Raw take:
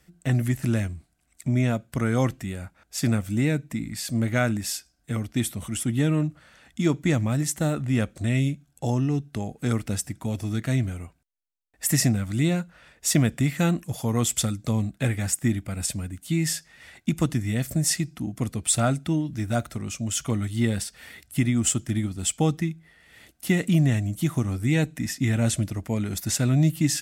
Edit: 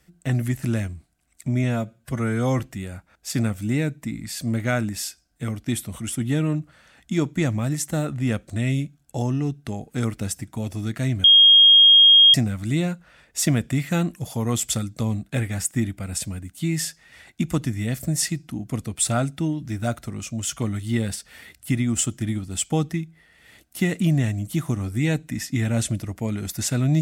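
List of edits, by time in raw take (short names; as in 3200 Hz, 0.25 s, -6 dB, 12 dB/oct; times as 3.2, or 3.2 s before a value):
1.64–2.28 stretch 1.5×
10.92–12.02 bleep 3250 Hz -8.5 dBFS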